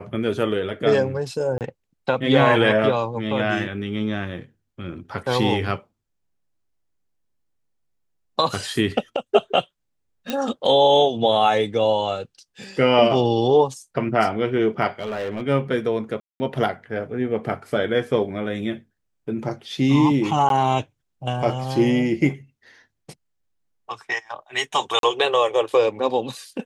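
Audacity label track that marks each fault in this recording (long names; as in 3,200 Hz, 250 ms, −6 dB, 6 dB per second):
1.580000	1.610000	drop-out 28 ms
10.300000	10.300000	click −10 dBFS
14.990000	15.430000	clipping −23 dBFS
16.200000	16.400000	drop-out 200 ms
20.490000	20.500000	drop-out 12 ms
24.990000	25.030000	drop-out 42 ms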